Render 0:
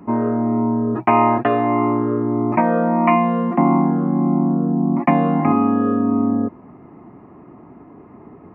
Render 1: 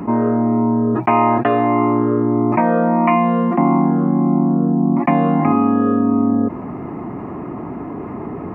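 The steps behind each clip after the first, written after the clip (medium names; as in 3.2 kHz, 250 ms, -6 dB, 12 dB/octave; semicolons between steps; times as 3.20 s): level flattener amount 50%; trim -1 dB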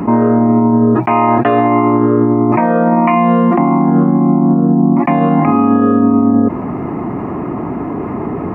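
peak limiter -10.5 dBFS, peak gain reduction 8 dB; trim +7.5 dB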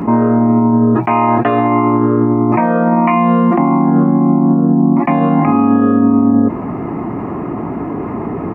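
doubling 18 ms -13.5 dB; trim -1 dB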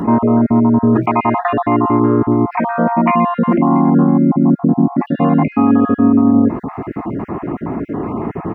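random holes in the spectrogram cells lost 28%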